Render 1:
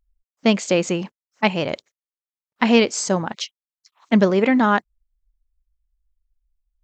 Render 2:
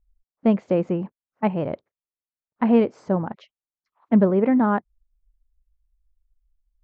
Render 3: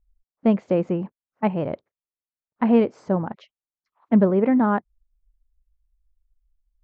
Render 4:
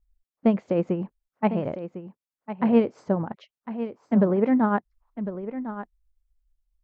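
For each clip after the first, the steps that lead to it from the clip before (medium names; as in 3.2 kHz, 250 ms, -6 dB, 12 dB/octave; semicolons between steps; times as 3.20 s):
low-pass 1.1 kHz 12 dB/octave; bass shelf 180 Hz +6 dB; trim -3 dB
no audible change
tremolo triangle 9.1 Hz, depth 50%; delay 1053 ms -11.5 dB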